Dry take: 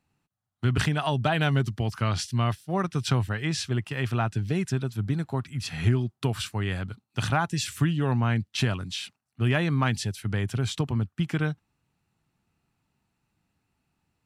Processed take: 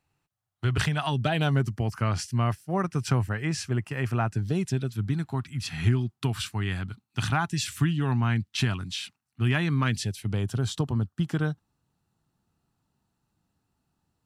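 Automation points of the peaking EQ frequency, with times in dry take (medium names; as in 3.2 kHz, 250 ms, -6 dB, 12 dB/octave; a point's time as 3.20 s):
peaking EQ -11.5 dB 0.53 oct
0.79 s 220 Hz
1.28 s 980 Hz
1.60 s 3.6 kHz
4.32 s 3.6 kHz
5.08 s 530 Hz
9.63 s 530 Hz
10.52 s 2.3 kHz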